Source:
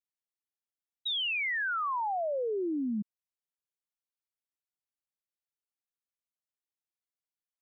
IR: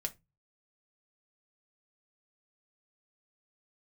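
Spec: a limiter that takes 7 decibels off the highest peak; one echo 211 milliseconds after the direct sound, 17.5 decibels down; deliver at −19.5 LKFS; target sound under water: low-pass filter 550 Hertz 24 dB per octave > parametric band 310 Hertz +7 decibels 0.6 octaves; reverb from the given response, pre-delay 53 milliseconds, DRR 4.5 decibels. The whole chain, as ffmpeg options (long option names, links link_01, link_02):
-filter_complex "[0:a]alimiter=level_in=11.5dB:limit=-24dB:level=0:latency=1,volume=-11.5dB,aecho=1:1:211:0.133,asplit=2[link_01][link_02];[1:a]atrim=start_sample=2205,adelay=53[link_03];[link_02][link_03]afir=irnorm=-1:irlink=0,volume=-4.5dB[link_04];[link_01][link_04]amix=inputs=2:normalize=0,lowpass=frequency=550:width=0.5412,lowpass=frequency=550:width=1.3066,equalizer=frequency=310:width_type=o:width=0.6:gain=7,volume=17.5dB"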